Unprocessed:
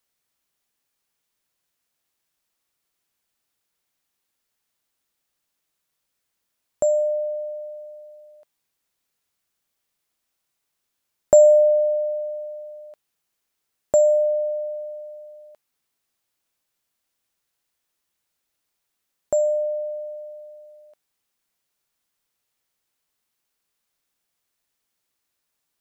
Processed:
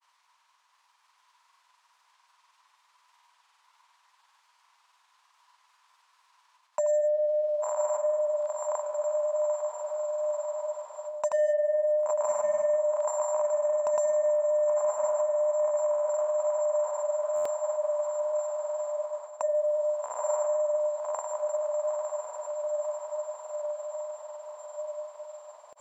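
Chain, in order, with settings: resonant high-pass 990 Hz, resonance Q 10; high shelf 4100 Hz +10 dB; on a send: diffused feedback echo 1.056 s, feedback 67%, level -3.5 dB; on the sum: overdrive pedal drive 19 dB, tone 2600 Hz, clips at -1 dBFS; air absorption 66 m; reverse; compressor 5:1, threshold -24 dBFS, peak gain reduction 14 dB; reverse; grains, pitch spread up and down by 0 st; stuck buffer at 17.35, samples 512, times 8

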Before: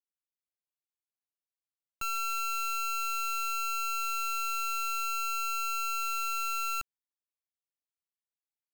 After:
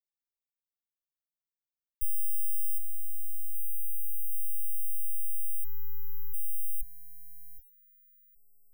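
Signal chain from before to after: on a send: narrowing echo 0.768 s, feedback 46%, band-pass 1700 Hz, level -4.5 dB; on the sum: dynamic EQ 2800 Hz, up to +6 dB, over -47 dBFS, Q 0.93; 5.64–6.34 LPF 12000 Hz 24 dB/oct; sample leveller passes 3; inverse Chebyshev band-stop 250–3800 Hz, stop band 80 dB; gain +7.5 dB

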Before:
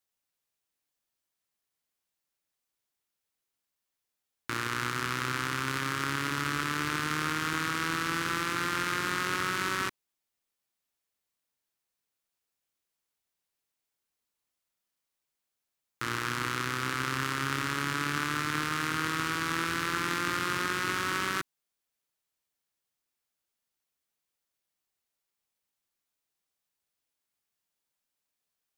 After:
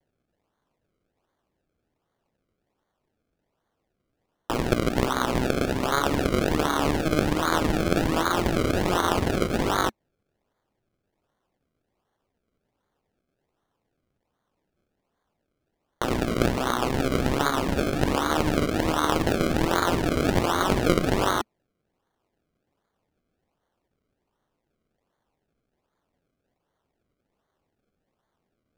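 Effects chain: elliptic high-pass 230 Hz; decimation with a swept rate 33×, swing 100% 1.3 Hz; high shelf 6100 Hz -6 dB; wow and flutter 75 cents; gain +9 dB

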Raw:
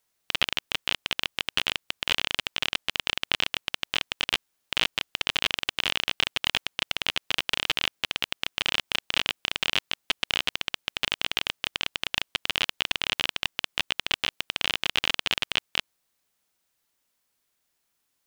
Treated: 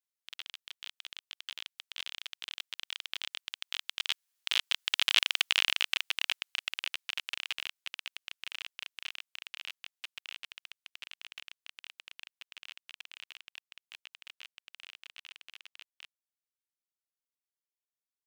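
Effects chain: Doppler pass-by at 5.33, 19 m/s, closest 11 m; tilt shelf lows -10 dB, about 740 Hz; gain -7.5 dB

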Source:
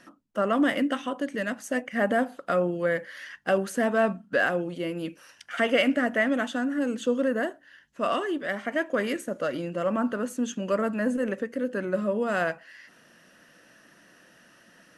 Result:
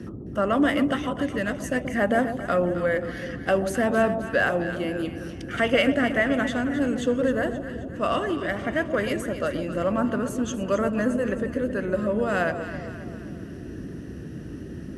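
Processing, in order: echo with dull and thin repeats by turns 0.132 s, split 880 Hz, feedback 70%, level -8 dB; band noise 48–350 Hz -38 dBFS; gain +1.5 dB

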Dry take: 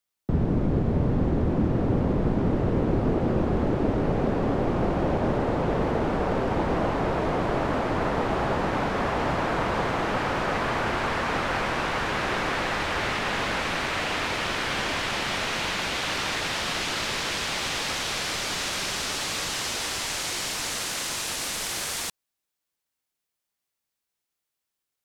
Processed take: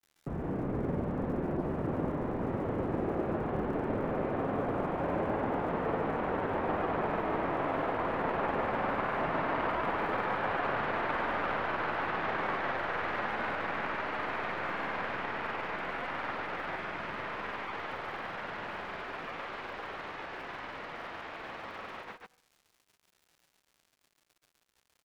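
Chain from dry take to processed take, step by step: tracing distortion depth 0.47 ms; Bessel low-pass 1500 Hz, order 4; tilt +3 dB/oct; resonator 54 Hz, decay 0.49 s, harmonics all, mix 40%; crackle 120/s -50 dBFS; grains; on a send: echo 0.14 s -3.5 dB

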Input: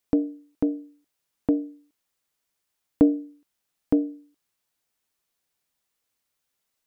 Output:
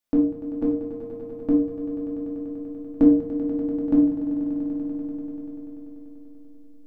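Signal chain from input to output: in parallel at -11 dB: backlash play -22.5 dBFS; on the sum: swelling echo 97 ms, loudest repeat 5, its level -13 dB; reverb RT60 0.40 s, pre-delay 3 ms, DRR -2.5 dB; gain -7.5 dB

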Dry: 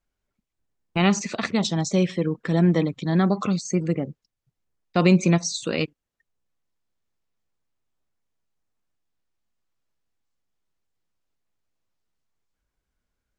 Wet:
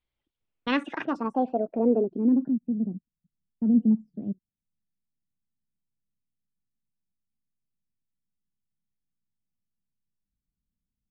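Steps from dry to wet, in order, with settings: speed glide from 145% -> 96%; low-pass sweep 3400 Hz -> 200 Hz, 0.42–2.61; gain -6.5 dB

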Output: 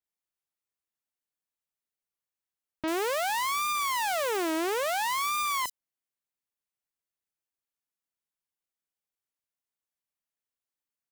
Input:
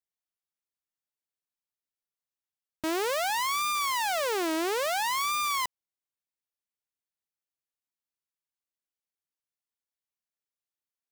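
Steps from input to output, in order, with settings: bands offset in time lows, highs 40 ms, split 4500 Hz

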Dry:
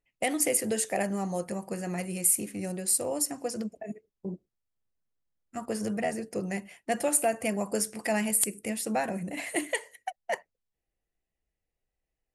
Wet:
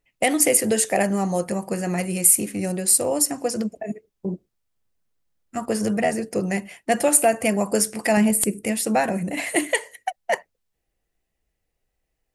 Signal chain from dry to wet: 8.17–8.65 tilt shelf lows +5.5 dB, about 770 Hz; gain +8.5 dB

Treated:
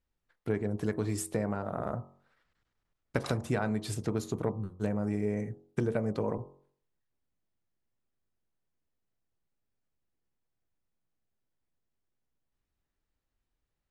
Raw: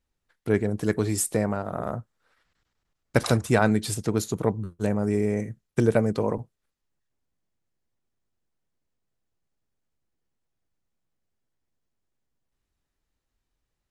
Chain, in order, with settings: compressor, threshold -22 dBFS, peak gain reduction 8 dB; high shelf 4600 Hz -9 dB; de-hum 45.87 Hz, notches 28; gain -3 dB

